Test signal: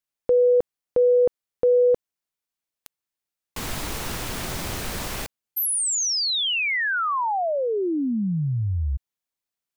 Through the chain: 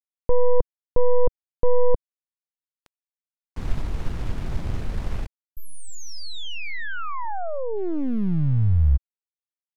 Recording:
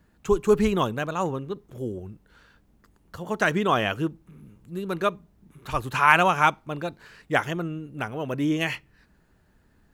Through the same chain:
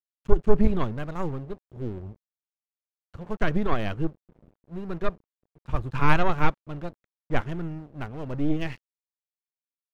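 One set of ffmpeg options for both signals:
-af "aeval=exprs='0.794*(cos(1*acos(clip(val(0)/0.794,-1,1)))-cos(1*PI/2))+0.126*(cos(3*acos(clip(val(0)/0.794,-1,1)))-cos(3*PI/2))+0.0224*(cos(4*acos(clip(val(0)/0.794,-1,1)))-cos(4*PI/2))+0.0282*(cos(5*acos(clip(val(0)/0.794,-1,1)))-cos(5*PI/2))+0.1*(cos(6*acos(clip(val(0)/0.794,-1,1)))-cos(6*PI/2))':c=same,aemphasis=mode=reproduction:type=riaa,aeval=exprs='sgn(val(0))*max(abs(val(0))-0.0126,0)':c=same,volume=-4.5dB"

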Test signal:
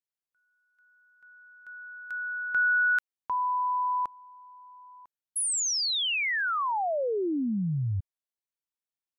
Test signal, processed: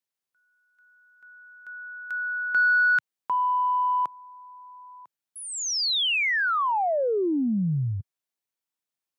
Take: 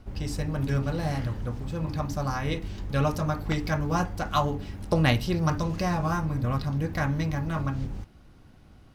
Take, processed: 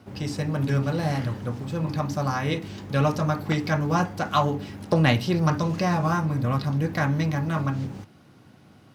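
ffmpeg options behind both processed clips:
-filter_complex "[0:a]acrossover=split=6100[a][b];[b]acompressor=threshold=-50dB:ratio=4:attack=1:release=60[c];[a][c]amix=inputs=2:normalize=0,highpass=f=110:w=0.5412,highpass=f=110:w=1.3066,asplit=2[d][e];[e]asoftclip=type=tanh:threshold=-20dB,volume=-4dB[f];[d][f]amix=inputs=2:normalize=0"

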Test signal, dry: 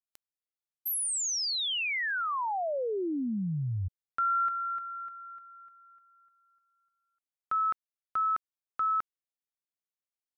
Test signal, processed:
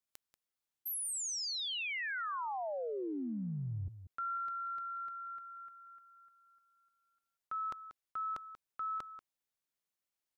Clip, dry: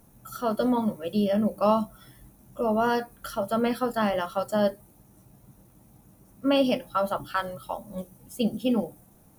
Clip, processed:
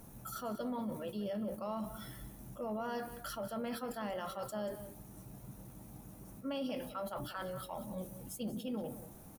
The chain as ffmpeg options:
-filter_complex "[0:a]areverse,acompressor=threshold=-42dB:ratio=4:attack=0.69:release=84:knee=6:detection=peak,areverse,asplit=2[a][b];[b]adelay=186.6,volume=-12dB,highshelf=f=4k:g=-4.2[c];[a][c]amix=inputs=2:normalize=0,volume=3dB"

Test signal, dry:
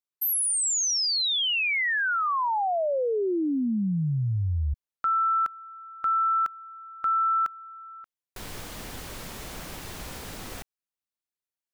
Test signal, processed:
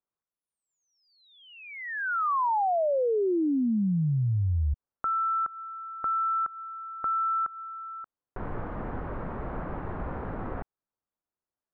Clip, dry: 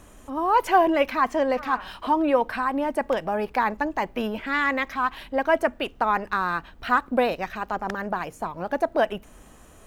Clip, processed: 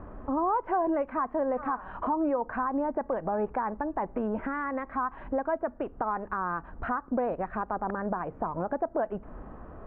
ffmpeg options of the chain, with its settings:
-af "acompressor=threshold=-30dB:ratio=6:attack=1.6:release=240:knee=1:detection=rms,lowpass=f=1.4k:w=0.5412,lowpass=f=1.4k:w=1.3066,volume=6.5dB"

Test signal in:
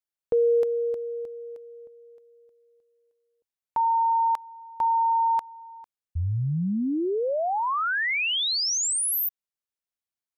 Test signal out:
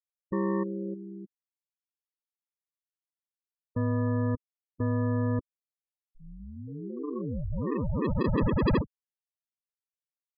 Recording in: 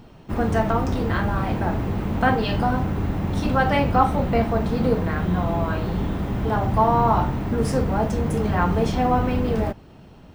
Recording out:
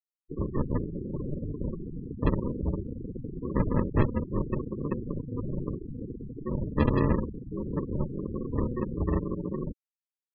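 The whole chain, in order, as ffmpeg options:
-af "aemphasis=mode=production:type=riaa,aeval=exprs='val(0)*sin(2*PI*1400*n/s)':c=same,aresample=11025,acrusher=samples=15:mix=1:aa=0.000001,aresample=44100,afftfilt=real='re*gte(hypot(re,im),0.0631)':imag='im*gte(hypot(re,im),0.0631)':win_size=1024:overlap=0.75,volume=-1dB"

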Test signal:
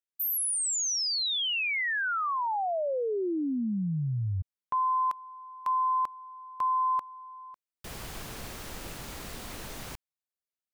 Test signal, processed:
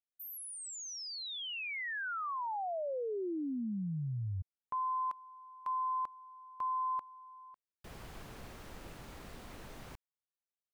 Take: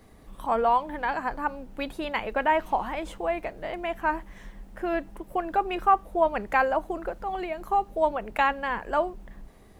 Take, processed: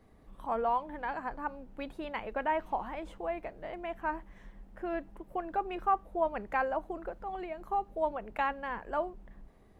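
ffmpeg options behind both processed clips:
-af "highshelf=f=3.2k:g=-9.5,volume=-7dB"

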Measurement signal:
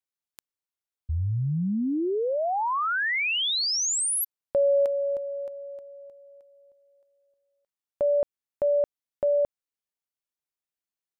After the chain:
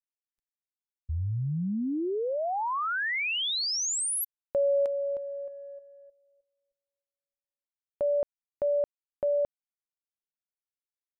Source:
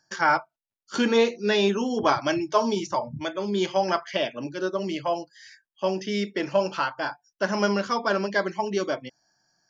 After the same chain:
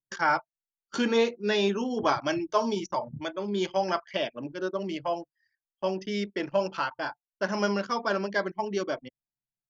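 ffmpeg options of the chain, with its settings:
-af "anlmdn=2.51,volume=-3.5dB"

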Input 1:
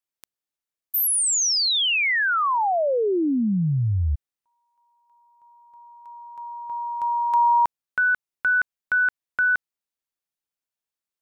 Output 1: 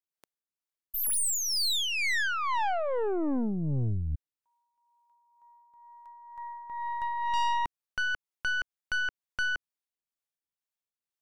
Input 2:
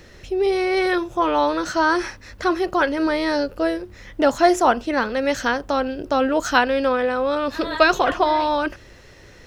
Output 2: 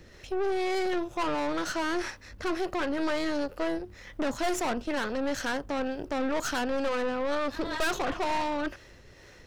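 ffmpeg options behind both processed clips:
-filter_complex "[0:a]acrossover=split=400[a][b];[a]aeval=exprs='val(0)*(1-0.5/2+0.5/2*cos(2*PI*2.1*n/s))':c=same[c];[b]aeval=exprs='val(0)*(1-0.5/2-0.5/2*cos(2*PI*2.1*n/s))':c=same[d];[c][d]amix=inputs=2:normalize=0,aeval=exprs='(tanh(20*val(0)+0.7)-tanh(0.7))/20':c=same"

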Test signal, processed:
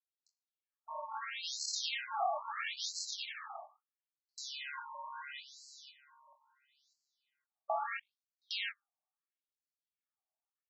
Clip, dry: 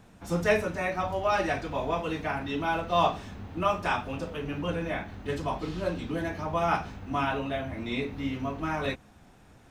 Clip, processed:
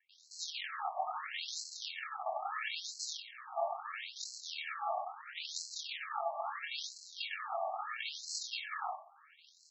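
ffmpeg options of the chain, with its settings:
-filter_complex "[0:a]highpass=46,bandreject=f=50:t=h:w=6,bandreject=f=100:t=h:w=6,bandreject=f=150:t=h:w=6,bandreject=f=200:t=h:w=6,bandreject=f=250:t=h:w=6,bandreject=f=300:t=h:w=6,bandreject=f=350:t=h:w=6,acrossover=split=3000[a][b];[b]acompressor=threshold=-33dB:ratio=4:attack=1:release=60[c];[a][c]amix=inputs=2:normalize=0,alimiter=limit=-21.5dB:level=0:latency=1:release=226,acrossover=split=360|2900[d][e][f];[d]acompressor=threshold=-36dB:ratio=4[g];[e]acompressor=threshold=-34dB:ratio=4[h];[f]acompressor=threshold=-46dB:ratio=4[i];[g][h][i]amix=inputs=3:normalize=0,aresample=16000,acrusher=samples=32:mix=1:aa=0.000001,aresample=44100,flanger=delay=2:depth=9.8:regen=32:speed=1.9:shape=sinusoidal,asplit=2[j][k];[k]adelay=25,volume=-6dB[l];[j][l]amix=inputs=2:normalize=0,acrossover=split=1400[m][n];[n]adelay=90[o];[m][o]amix=inputs=2:normalize=0,afftfilt=real='re*between(b*sr/1024,830*pow(5800/830,0.5+0.5*sin(2*PI*0.75*pts/sr))/1.41,830*pow(5800/830,0.5+0.5*sin(2*PI*0.75*pts/sr))*1.41)':imag='im*between(b*sr/1024,830*pow(5800/830,0.5+0.5*sin(2*PI*0.75*pts/sr))/1.41,830*pow(5800/830,0.5+0.5*sin(2*PI*0.75*pts/sr))*1.41)':win_size=1024:overlap=0.75,volume=14.5dB"

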